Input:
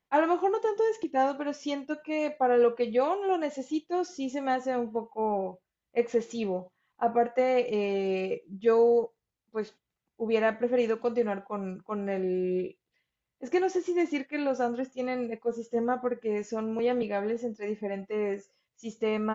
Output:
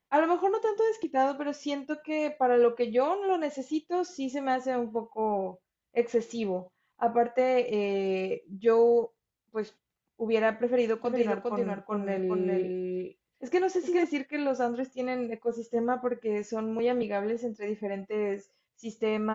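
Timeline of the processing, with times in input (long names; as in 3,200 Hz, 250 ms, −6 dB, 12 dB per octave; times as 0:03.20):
0:10.64–0:14.04: single-tap delay 406 ms −4 dB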